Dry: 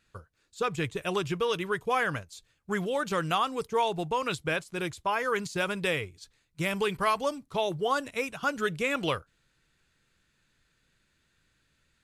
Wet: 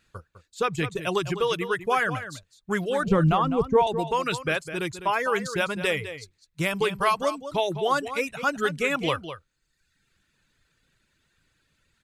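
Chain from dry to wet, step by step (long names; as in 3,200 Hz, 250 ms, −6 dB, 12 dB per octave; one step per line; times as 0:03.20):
reverb reduction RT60 1 s
0:03.03–0:03.87: spectral tilt −4.5 dB per octave
slap from a distant wall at 35 metres, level −11 dB
level +4 dB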